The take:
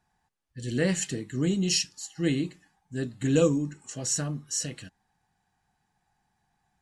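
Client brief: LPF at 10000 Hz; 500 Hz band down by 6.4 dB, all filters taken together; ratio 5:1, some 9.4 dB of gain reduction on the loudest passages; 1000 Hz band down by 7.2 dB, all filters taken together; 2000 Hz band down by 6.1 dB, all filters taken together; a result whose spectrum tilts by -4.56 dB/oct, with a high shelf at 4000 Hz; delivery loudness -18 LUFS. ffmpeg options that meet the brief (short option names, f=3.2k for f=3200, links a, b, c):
-af "lowpass=10k,equalizer=f=500:t=o:g=-6,equalizer=f=1k:t=o:g=-6,equalizer=f=2k:t=o:g=-4.5,highshelf=f=4k:g=-5,acompressor=threshold=-32dB:ratio=5,volume=19dB"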